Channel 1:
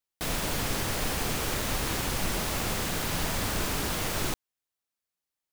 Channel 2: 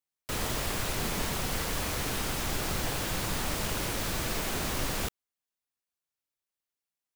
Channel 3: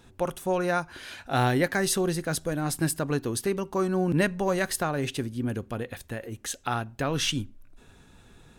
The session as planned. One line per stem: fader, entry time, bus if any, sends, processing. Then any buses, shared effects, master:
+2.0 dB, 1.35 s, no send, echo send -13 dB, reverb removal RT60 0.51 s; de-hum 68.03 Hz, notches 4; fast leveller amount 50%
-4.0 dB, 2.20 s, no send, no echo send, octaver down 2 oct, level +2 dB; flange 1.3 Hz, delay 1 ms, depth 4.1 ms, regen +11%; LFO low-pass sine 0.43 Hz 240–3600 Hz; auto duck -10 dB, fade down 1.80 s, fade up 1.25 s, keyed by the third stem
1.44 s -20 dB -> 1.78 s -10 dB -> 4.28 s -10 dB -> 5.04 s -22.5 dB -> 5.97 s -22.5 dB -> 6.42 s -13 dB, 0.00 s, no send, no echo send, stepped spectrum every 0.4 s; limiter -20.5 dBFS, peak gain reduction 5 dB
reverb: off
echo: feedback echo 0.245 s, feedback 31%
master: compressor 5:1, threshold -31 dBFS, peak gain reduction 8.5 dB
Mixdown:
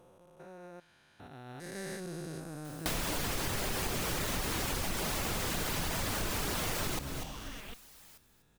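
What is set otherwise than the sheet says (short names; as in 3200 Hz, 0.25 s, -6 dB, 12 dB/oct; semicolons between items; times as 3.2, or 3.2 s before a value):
stem 1: entry 1.35 s -> 2.65 s; stem 2: entry 2.20 s -> 2.65 s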